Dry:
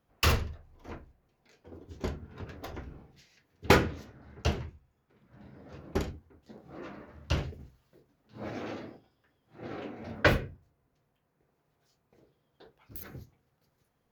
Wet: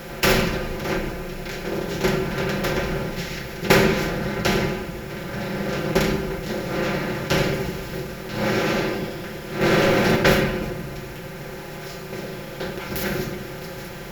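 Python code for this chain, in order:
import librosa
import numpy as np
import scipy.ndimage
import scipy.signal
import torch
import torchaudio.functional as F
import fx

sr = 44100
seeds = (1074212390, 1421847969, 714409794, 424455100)

y = fx.bin_compress(x, sr, power=0.4)
y = fx.high_shelf(y, sr, hz=6000.0, db=4.5)
y = fx.notch(y, sr, hz=1100.0, q=9.0)
y = y + 0.78 * np.pad(y, (int(5.8 * sr / 1000.0), 0))[:len(y)]
y = fx.leveller(y, sr, passes=2, at=(9.61, 10.16))
y = fx.room_shoebox(y, sr, seeds[0], volume_m3=1500.0, walls='mixed', distance_m=1.1)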